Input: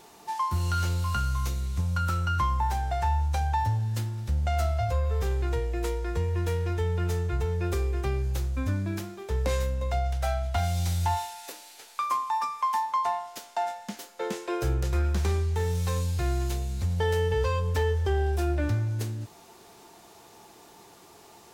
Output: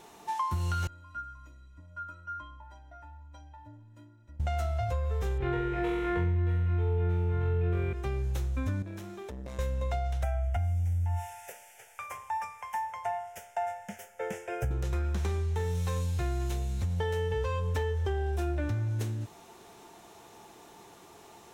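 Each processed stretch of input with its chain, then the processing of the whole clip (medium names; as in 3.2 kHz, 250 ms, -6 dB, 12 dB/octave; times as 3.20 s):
0.87–4.40 s: low-pass 1.3 kHz 6 dB/octave + inharmonic resonator 290 Hz, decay 0.25 s, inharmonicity 0.03
5.38–7.93 s: resonant high shelf 4.3 kHz -13 dB, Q 1.5 + flutter echo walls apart 3.9 m, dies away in 1.3 s
8.82–9.59 s: compression 2.5:1, threshold -38 dBFS + transformer saturation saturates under 240 Hz
10.23–14.71 s: peaking EQ 88 Hz +14 dB 0.72 oct + static phaser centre 1.1 kHz, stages 6 + compression, threshold -20 dBFS
whole clip: treble shelf 8.3 kHz -5.5 dB; compression, threshold -27 dBFS; peaking EQ 4.7 kHz -7.5 dB 0.2 oct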